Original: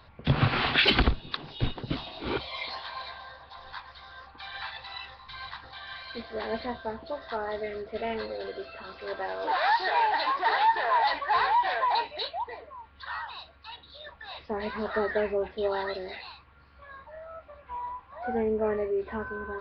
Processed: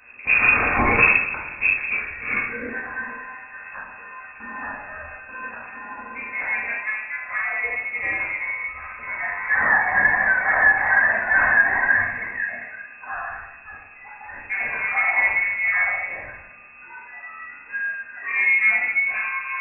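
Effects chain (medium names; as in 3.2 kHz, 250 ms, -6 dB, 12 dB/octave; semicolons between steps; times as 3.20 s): two-slope reverb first 0.76 s, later 2.3 s, DRR -6 dB; frequency inversion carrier 2.6 kHz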